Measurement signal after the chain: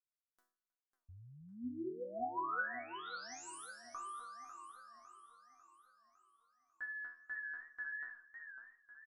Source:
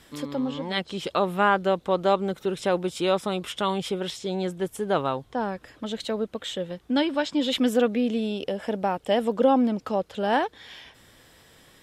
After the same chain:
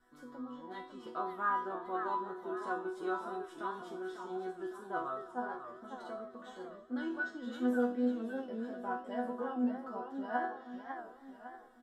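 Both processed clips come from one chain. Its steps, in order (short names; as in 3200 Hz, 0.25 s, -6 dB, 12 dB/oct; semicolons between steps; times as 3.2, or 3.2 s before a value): resonant high shelf 1900 Hz -8.5 dB, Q 3; resonator bank B3 sus4, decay 0.48 s; vibrato 2.5 Hz 11 cents; on a send: feedback echo 0.314 s, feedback 44%, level -22 dB; on the sum: warbling echo 0.551 s, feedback 50%, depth 170 cents, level -9 dB; gain +5.5 dB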